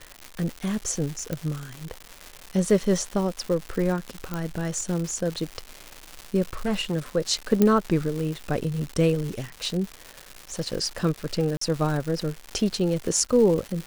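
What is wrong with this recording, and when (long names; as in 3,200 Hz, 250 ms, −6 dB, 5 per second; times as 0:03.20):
surface crackle 280 per second −29 dBFS
0:01.33: click
0:04.34: click −15 dBFS
0:06.53–0:06.95: clipping −21 dBFS
0:07.62: click −7 dBFS
0:11.57–0:11.61: drop-out 44 ms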